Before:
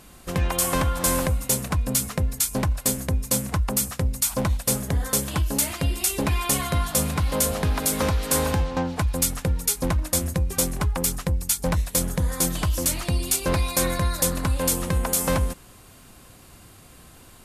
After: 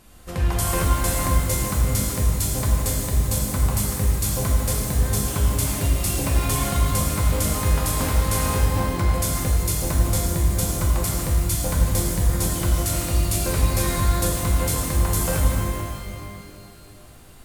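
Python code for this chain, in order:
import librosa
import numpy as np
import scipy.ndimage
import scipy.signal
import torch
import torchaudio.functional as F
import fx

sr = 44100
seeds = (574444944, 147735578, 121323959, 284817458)

y = fx.low_shelf(x, sr, hz=72.0, db=9.5)
y = fx.rev_shimmer(y, sr, seeds[0], rt60_s=2.2, semitones=12, shimmer_db=-8, drr_db=-3.0)
y = y * 10.0 ** (-6.0 / 20.0)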